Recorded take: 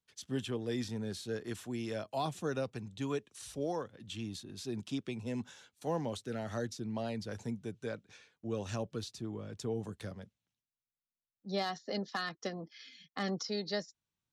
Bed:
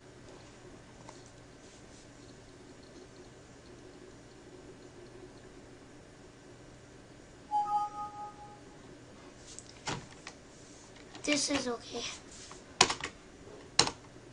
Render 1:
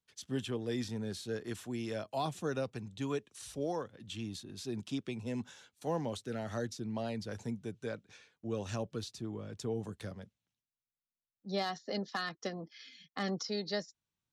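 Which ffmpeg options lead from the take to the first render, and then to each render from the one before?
-af anull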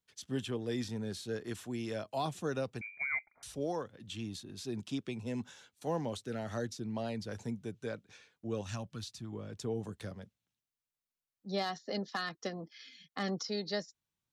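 -filter_complex "[0:a]asettb=1/sr,asplit=3[a][b][c];[a]atrim=end=2.814[d];[b]atrim=start=2.81:end=3.43,asetpts=PTS-STARTPTS,afade=t=in:d=0.004:c=qsin,afade=t=out:st=0.616:d=0.004:c=qsin,lowpass=f=2.1k:t=q:w=0.5098,lowpass=f=2.1k:t=q:w=0.6013,lowpass=f=2.1k:t=q:w=0.9,lowpass=f=2.1k:t=q:w=2.563,afreqshift=-2500[e];[c]atrim=start=3.426[f];[d][e]acrossfade=d=0.004:c1=hsin:c2=qsin[g];[g][f]acrossfade=d=0.004:c1=qsin:c2=hsin,asettb=1/sr,asplit=3[h][i][j];[h]atrim=end=8.614[k];[i]atrim=start=8.61:end=9.33,asetpts=PTS-STARTPTS,afade=t=in:d=0.004:c=qsin,afade=t=out:st=0.716:d=0.004:c=qsin,equalizer=f=430:w=1.5:g=-13.5[l];[j]atrim=start=9.326[m];[k][l]acrossfade=d=0.004:c1=hsin:c2=qsin[n];[n][m]acrossfade=d=0.004:c1=qsin:c2=hsin"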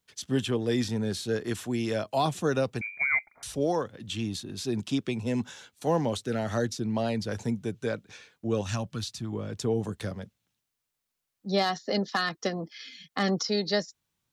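-af "volume=9dB"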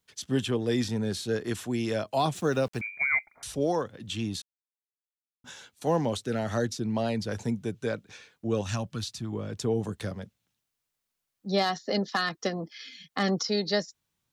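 -filter_complex "[0:a]asettb=1/sr,asplit=3[a][b][c];[a]atrim=end=2.354[d];[b]atrim=start=2.35:end=2.81,asetpts=PTS-STARTPTS,afade=t=in:d=0.004:c=qsin,afade=t=out:st=0.456:d=0.004:c=qsin,aeval=exprs='val(0)*gte(abs(val(0)),0.00531)':c=same[e];[c]atrim=start=2.806[f];[d][e]acrossfade=d=0.004:c1=hsin:c2=qsin[g];[g][f]acrossfade=d=0.004:c1=qsin:c2=hsin,asplit=3[h][i][j];[h]atrim=end=4.42,asetpts=PTS-STARTPTS,afade=t=out:st=4.416:d=0.004:c=hsin[k];[i]atrim=start=4.42:end=5.44,asetpts=PTS-STARTPTS,volume=0[l];[j]atrim=start=5.44,asetpts=PTS-STARTPTS,afade=t=in:d=0.004:c=hsin[m];[k][l][m]concat=n=3:v=0:a=1"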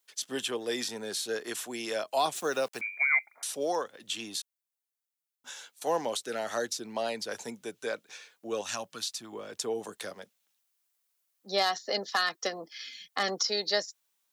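-af "highpass=490,highshelf=f=6.8k:g=8.5"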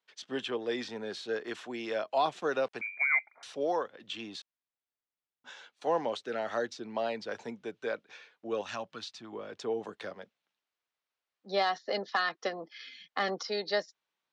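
-af "lowpass=4.2k,aemphasis=mode=reproduction:type=50kf"

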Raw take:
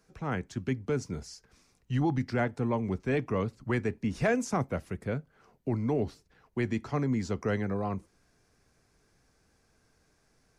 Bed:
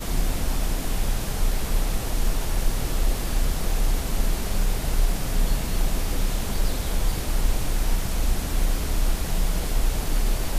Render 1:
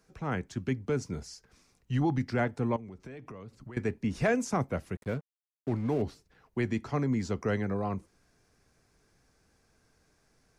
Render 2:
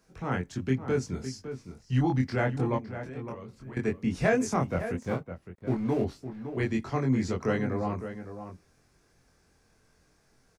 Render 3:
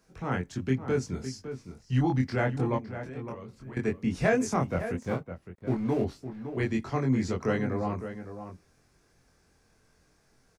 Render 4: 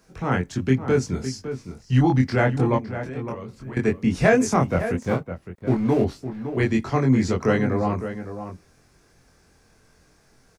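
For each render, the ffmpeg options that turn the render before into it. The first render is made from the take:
-filter_complex "[0:a]asettb=1/sr,asplit=3[a][b][c];[a]atrim=end=2.764[d];[b]atrim=start=2.76:end=3.77,asetpts=PTS-STARTPTS,afade=t=in:d=0.004:c=qsin,afade=t=out:st=1.006:d=0.004:c=qsin,acompressor=threshold=-40dB:ratio=20:attack=3.2:release=140:knee=1:detection=peak[e];[c]atrim=start=3.766[f];[d][e]acrossfade=d=0.004:c1=hsin:c2=qsin[g];[g][f]acrossfade=d=0.004:c1=qsin:c2=hsin,asettb=1/sr,asplit=3[h][i][j];[h]atrim=end=4.954[k];[i]atrim=start=4.95:end=6.02,asetpts=PTS-STARTPTS,afade=t=in:d=0.004:c=qsin,afade=t=out:st=1.066:d=0.004:c=qsin,aeval=exprs='sgn(val(0))*max(abs(val(0))-0.00447,0)':c=same[l];[j]atrim=start=6.016[m];[k][l]acrossfade=d=0.004:c1=hsin:c2=qsin[n];[n][m]acrossfade=d=0.004:c1=qsin:c2=hsin"
-filter_complex "[0:a]asplit=2[a][b];[b]adelay=23,volume=-2dB[c];[a][c]amix=inputs=2:normalize=0,asplit=2[d][e];[e]adelay=559.8,volume=-10dB,highshelf=f=4k:g=-12.6[f];[d][f]amix=inputs=2:normalize=0"
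-af anull
-af "volume=7.5dB"

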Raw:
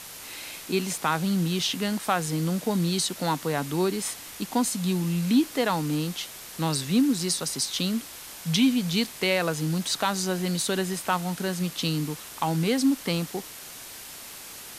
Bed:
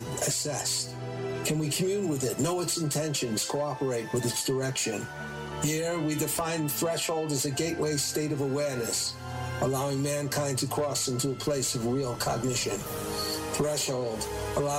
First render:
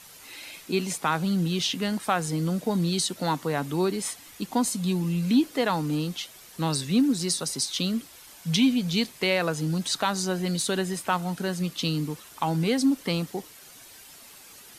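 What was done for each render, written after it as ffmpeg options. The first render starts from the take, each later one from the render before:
-af "afftdn=nr=9:nf=-42"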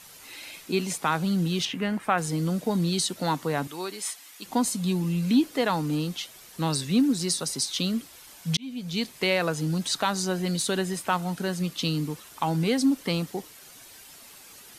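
-filter_complex "[0:a]asettb=1/sr,asplit=3[a][b][c];[a]atrim=end=1.654[d];[b]atrim=start=1.65:end=2.18,asetpts=PTS-STARTPTS,afade=t=in:d=0.004:c=qsin,afade=t=out:st=0.526:d=0.004:c=qsin,highshelf=f=3.1k:t=q:w=1.5:g=-9[e];[c]atrim=start=2.176[f];[d][e]acrossfade=d=0.004:c1=hsin:c2=qsin[g];[g][f]acrossfade=d=0.004:c1=qsin:c2=hsin,asettb=1/sr,asplit=3[h][i][j];[h]atrim=end=3.674[k];[i]atrim=start=3.67:end=4.46,asetpts=PTS-STARTPTS,afade=t=in:d=0.004:c=qsin,afade=t=out:st=0.786:d=0.004:c=qsin,highpass=f=1.1k:p=1[l];[j]atrim=start=4.456[m];[k][l]acrossfade=d=0.004:c1=hsin:c2=qsin[n];[n][m]acrossfade=d=0.004:c1=qsin:c2=hsin,asplit=2[o][p];[o]atrim=end=8.57,asetpts=PTS-STARTPTS,afade=t=out:st=8.566:d=0.004:c=hsin[q];[p]atrim=start=8.57,asetpts=PTS-STARTPTS,afade=t=in:d=0.61[r];[q][r]concat=n=2:v=0:a=1"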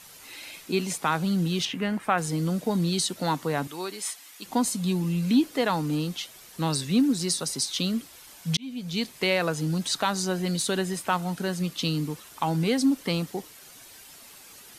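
-af anull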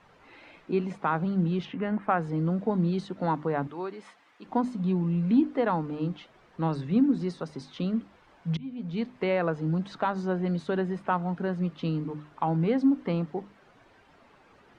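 -af "lowpass=1.4k,bandreject=f=50:t=h:w=6,bandreject=f=100:t=h:w=6,bandreject=f=150:t=h:w=6,bandreject=f=200:t=h:w=6,bandreject=f=250:t=h:w=6,bandreject=f=300:t=h:w=6"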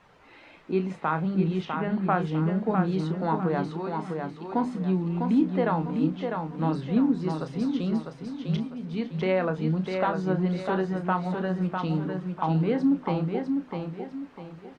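-filter_complex "[0:a]asplit=2[a][b];[b]adelay=32,volume=-10dB[c];[a][c]amix=inputs=2:normalize=0,aecho=1:1:651|1302|1953|2604:0.562|0.202|0.0729|0.0262"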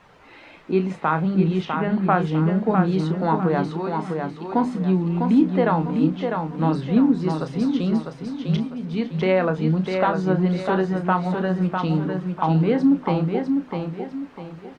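-af "volume=5.5dB"

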